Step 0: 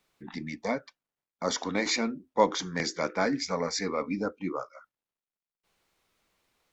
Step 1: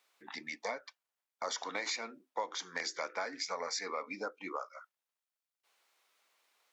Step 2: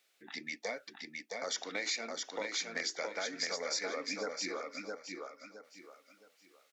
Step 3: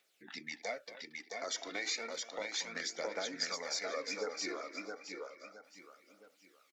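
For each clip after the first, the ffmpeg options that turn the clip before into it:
-af "highpass=640,acompressor=threshold=0.0178:ratio=6,volume=1.12"
-filter_complex "[0:a]equalizer=f=1000:t=o:w=0.59:g=-14.5,asplit=2[s0][s1];[s1]aecho=0:1:666|1332|1998|2664:0.668|0.201|0.0602|0.018[s2];[s0][s2]amix=inputs=2:normalize=0,volume=1.26"
-filter_complex "[0:a]asplit=2[s0][s1];[s1]adelay=230,highpass=300,lowpass=3400,asoftclip=type=hard:threshold=0.0282,volume=0.224[s2];[s0][s2]amix=inputs=2:normalize=0,aphaser=in_gain=1:out_gain=1:delay=3.2:decay=0.45:speed=0.32:type=triangular,volume=0.75"

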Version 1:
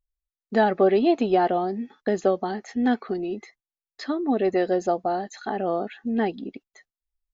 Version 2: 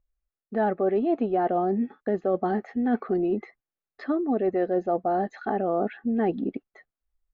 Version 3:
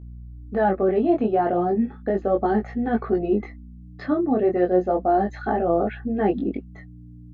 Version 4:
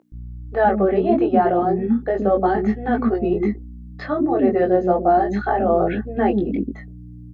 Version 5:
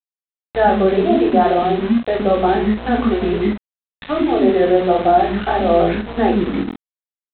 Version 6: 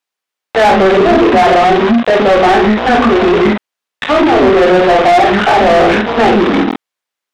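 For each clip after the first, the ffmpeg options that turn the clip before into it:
-af "lowpass=1500,bandreject=f=940:w=6.5,areverse,acompressor=threshold=0.0398:ratio=6,areverse,volume=2.11"
-af "aeval=exprs='val(0)+0.00708*(sin(2*PI*60*n/s)+sin(2*PI*2*60*n/s)/2+sin(2*PI*3*60*n/s)/3+sin(2*PI*4*60*n/s)/4+sin(2*PI*5*60*n/s)/5)':c=same,flanger=delay=18:depth=5.4:speed=0.35,volume=2.24"
-filter_complex "[0:a]acrossover=split=360[s0][s1];[s0]adelay=120[s2];[s2][s1]amix=inputs=2:normalize=0,volume=1.78"
-filter_complex "[0:a]aeval=exprs='val(0)+0.0141*(sin(2*PI*60*n/s)+sin(2*PI*2*60*n/s)/2+sin(2*PI*3*60*n/s)/3+sin(2*PI*4*60*n/s)/4+sin(2*PI*5*60*n/s)/5)':c=same,aresample=8000,aeval=exprs='val(0)*gte(abs(val(0)),0.0501)':c=same,aresample=44100,asplit=2[s0][s1];[s1]adelay=47,volume=0.473[s2];[s0][s2]amix=inputs=2:normalize=0,volume=1.26"
-filter_complex "[0:a]asplit=2[s0][s1];[s1]highpass=f=720:p=1,volume=25.1,asoftclip=type=tanh:threshold=0.891[s2];[s0][s2]amix=inputs=2:normalize=0,lowpass=f=2700:p=1,volume=0.501"

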